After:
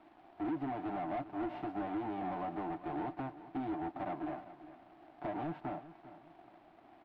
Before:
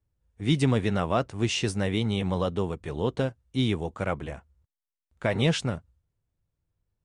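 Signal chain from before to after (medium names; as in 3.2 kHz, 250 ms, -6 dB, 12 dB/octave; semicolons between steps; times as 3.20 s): formants flattened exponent 0.3; comb 6.7 ms, depth 56%; added noise white -50 dBFS; compression 6:1, threshold -31 dBFS, peak gain reduction 15 dB; two resonant band-passes 480 Hz, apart 1.1 oct; bit crusher 12-bit; waveshaping leveller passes 3; distance through air 470 m; on a send: feedback delay 398 ms, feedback 31%, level -15 dB; on the sum: trim +2.5 dB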